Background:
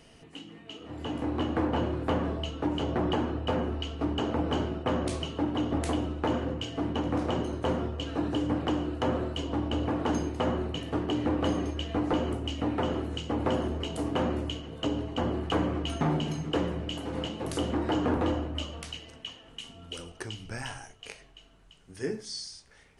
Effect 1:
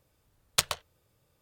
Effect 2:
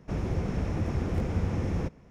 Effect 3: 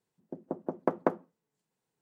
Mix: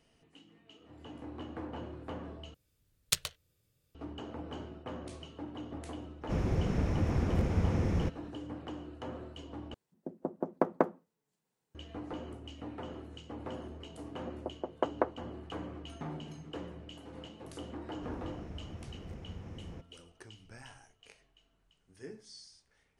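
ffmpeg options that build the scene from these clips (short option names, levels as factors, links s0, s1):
-filter_complex "[2:a]asplit=2[s0][s1];[3:a]asplit=2[s2][s3];[0:a]volume=0.2[s4];[1:a]equalizer=f=870:w=0.91:g=-12.5[s5];[s3]highpass=360,lowpass=3800[s6];[s4]asplit=3[s7][s8][s9];[s7]atrim=end=2.544[s10];[s5]atrim=end=1.41,asetpts=PTS-STARTPTS,volume=0.668[s11];[s8]atrim=start=3.946:end=9.744[s12];[s2]atrim=end=2.01,asetpts=PTS-STARTPTS,volume=0.944[s13];[s9]atrim=start=11.746[s14];[s0]atrim=end=2.1,asetpts=PTS-STARTPTS,volume=0.891,afade=t=in:d=0.004:c=hsin,afade=t=out:st=2.096:d=0.004:c=hsin,adelay=6210[s15];[s6]atrim=end=2.01,asetpts=PTS-STARTPTS,volume=0.841,afade=t=in:d=0.004:c=hsin,afade=t=out:st=2.006:d=0.004:c=hsin,adelay=13950[s16];[s1]atrim=end=2.1,asetpts=PTS-STARTPTS,volume=0.15,afade=t=in:d=0.004:c=hsin,afade=t=out:st=2.096:d=0.004:c=hsin,adelay=17930[s17];[s10][s11]acrossfade=d=0.004:c1=hsin:c2=hsin[s18];[s18][s12]acrossfade=d=0.004:c1=hsin:c2=hsin[s19];[s19][s13]acrossfade=d=0.004:c1=hsin:c2=hsin[s20];[s20][s14]acrossfade=d=0.004:c1=hsin:c2=hsin[s21];[s21][s15][s16][s17]amix=inputs=4:normalize=0"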